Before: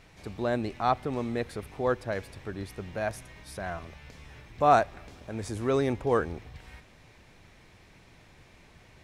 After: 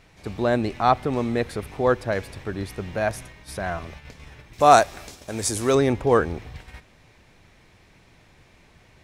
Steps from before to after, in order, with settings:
noise gate −47 dBFS, range −6 dB
0:04.53–0:05.75: bass and treble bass −4 dB, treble +14 dB
level +7 dB

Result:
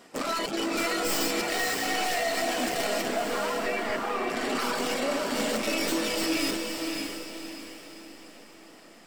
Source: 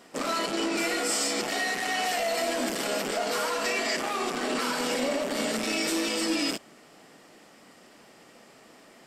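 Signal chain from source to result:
stylus tracing distortion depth 0.066 ms
reverb reduction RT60 0.52 s
0:03.08–0:04.30: low-pass filter 2,300 Hz 12 dB per octave
feedback delay with all-pass diffusion 564 ms, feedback 42%, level −4 dB

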